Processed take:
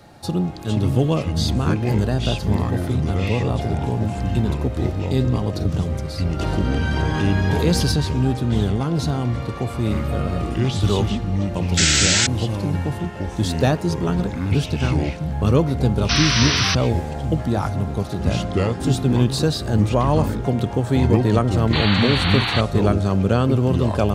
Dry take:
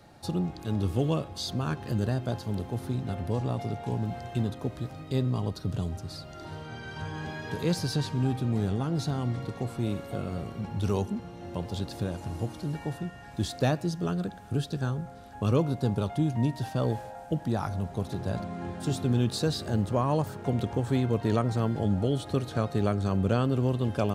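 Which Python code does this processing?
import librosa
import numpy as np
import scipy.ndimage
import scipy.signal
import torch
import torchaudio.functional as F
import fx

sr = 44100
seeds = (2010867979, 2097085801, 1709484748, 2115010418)

y = fx.spec_paint(x, sr, seeds[0], shape='noise', start_s=11.77, length_s=0.5, low_hz=1300.0, high_hz=8200.0, level_db=-25.0)
y = fx.echo_pitch(y, sr, ms=376, semitones=-5, count=2, db_per_echo=-3.0)
y = fx.env_flatten(y, sr, amount_pct=50, at=(6.39, 7.92))
y = y * 10.0 ** (7.5 / 20.0)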